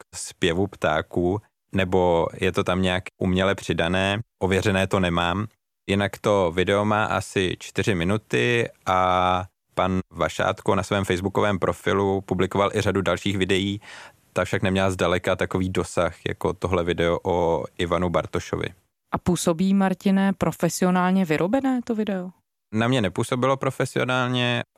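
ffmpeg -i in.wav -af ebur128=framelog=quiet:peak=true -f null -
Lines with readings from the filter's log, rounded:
Integrated loudness:
  I:         -23.2 LUFS
  Threshold: -33.3 LUFS
Loudness range:
  LRA:         1.8 LU
  Threshold: -43.3 LUFS
  LRA low:   -24.2 LUFS
  LRA high:  -22.4 LUFS
True peak:
  Peak:       -7.7 dBFS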